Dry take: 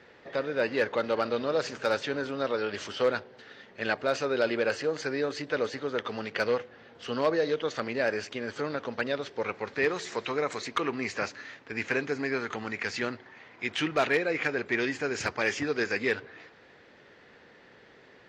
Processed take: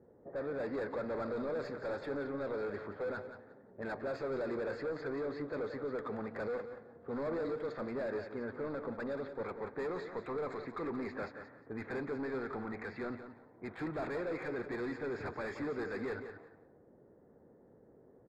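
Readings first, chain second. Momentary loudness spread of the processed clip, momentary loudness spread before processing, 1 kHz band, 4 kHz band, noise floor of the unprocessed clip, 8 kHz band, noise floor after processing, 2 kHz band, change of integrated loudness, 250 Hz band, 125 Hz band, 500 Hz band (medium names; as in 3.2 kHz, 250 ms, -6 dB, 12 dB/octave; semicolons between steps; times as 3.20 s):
8 LU, 8 LU, -10.0 dB, -21.5 dB, -56 dBFS, under -20 dB, -62 dBFS, -14.0 dB, -9.5 dB, -6.0 dB, -5.5 dB, -8.5 dB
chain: level-controlled noise filter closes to 470 Hz, open at -24 dBFS; overload inside the chain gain 32 dB; boxcar filter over 15 samples; on a send: feedback delay 177 ms, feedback 20%, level -10 dB; on the sum: trim -2 dB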